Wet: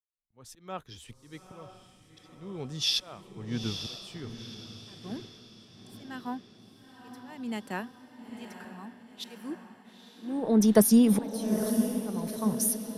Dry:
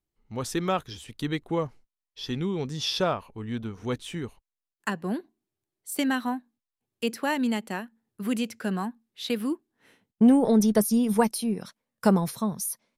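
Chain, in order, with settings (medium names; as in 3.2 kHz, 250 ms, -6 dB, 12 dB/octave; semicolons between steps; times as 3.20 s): gate with hold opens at -52 dBFS; slow attack 658 ms; on a send: echo that smears into a reverb 900 ms, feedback 58%, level -6.5 dB; on the sum: three bands expanded up and down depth 40%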